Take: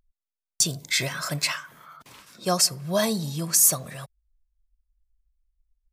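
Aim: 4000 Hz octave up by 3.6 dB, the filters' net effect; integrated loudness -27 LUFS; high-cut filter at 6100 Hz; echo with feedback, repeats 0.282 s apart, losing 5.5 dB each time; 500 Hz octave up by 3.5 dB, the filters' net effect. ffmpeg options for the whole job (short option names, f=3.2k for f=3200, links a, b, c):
-af "lowpass=6.1k,equalizer=f=500:t=o:g=4.5,equalizer=f=4k:t=o:g=6,aecho=1:1:282|564|846|1128|1410|1692|1974:0.531|0.281|0.149|0.079|0.0419|0.0222|0.0118,volume=-3.5dB"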